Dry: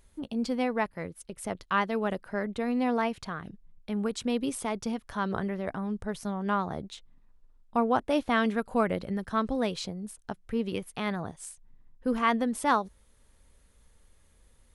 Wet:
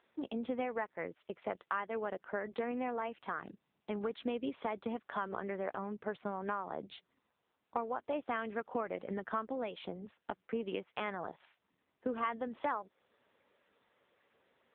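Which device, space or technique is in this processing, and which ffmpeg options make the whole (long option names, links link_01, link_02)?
voicemail: -filter_complex "[0:a]asplit=3[link_01][link_02][link_03];[link_01]afade=type=out:start_time=6.78:duration=0.02[link_04];[link_02]bandreject=frequency=60:width_type=h:width=6,bandreject=frequency=120:width_type=h:width=6,bandreject=frequency=180:width_type=h:width=6,afade=type=in:start_time=6.78:duration=0.02,afade=type=out:start_time=7.94:duration=0.02[link_05];[link_03]afade=type=in:start_time=7.94:duration=0.02[link_06];[link_04][link_05][link_06]amix=inputs=3:normalize=0,highpass=350,lowpass=3100,acompressor=threshold=-36dB:ratio=6,volume=3.5dB" -ar 8000 -c:a libopencore_amrnb -b:a 6700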